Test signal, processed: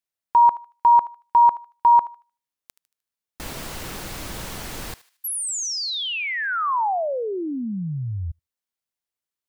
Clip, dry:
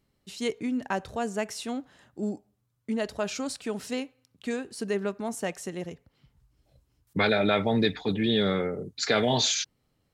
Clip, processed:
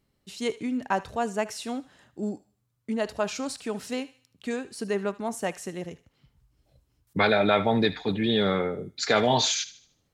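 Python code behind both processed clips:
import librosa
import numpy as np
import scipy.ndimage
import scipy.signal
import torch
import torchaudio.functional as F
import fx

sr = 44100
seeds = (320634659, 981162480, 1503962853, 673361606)

y = fx.echo_thinned(x, sr, ms=76, feedback_pct=41, hz=1100.0, wet_db=-15.5)
y = fx.dynamic_eq(y, sr, hz=930.0, q=1.2, threshold_db=-37.0, ratio=4.0, max_db=6)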